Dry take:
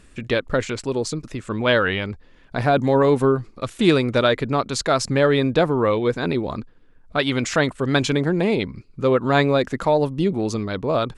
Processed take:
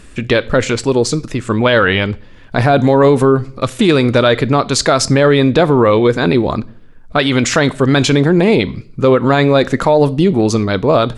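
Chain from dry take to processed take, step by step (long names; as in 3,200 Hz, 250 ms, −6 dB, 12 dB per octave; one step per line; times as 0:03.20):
on a send at −19.5 dB: parametric band 4,500 Hz +8 dB 1.5 octaves + convolution reverb RT60 0.55 s, pre-delay 7 ms
on the sum: boost into a limiter +11.5 dB
level −1 dB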